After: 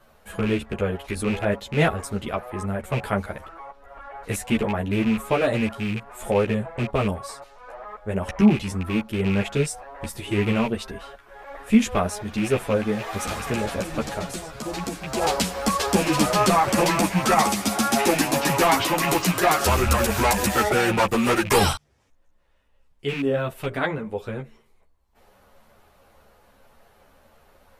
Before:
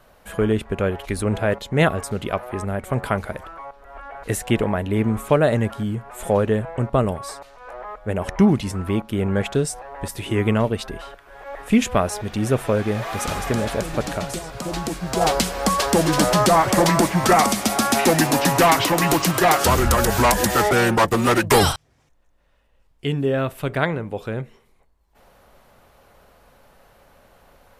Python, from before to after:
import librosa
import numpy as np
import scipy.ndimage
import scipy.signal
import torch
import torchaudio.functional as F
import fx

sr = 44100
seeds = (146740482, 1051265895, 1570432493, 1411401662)

y = fx.rattle_buzz(x, sr, strikes_db=-23.0, level_db=-17.0)
y = fx.ensemble(y, sr)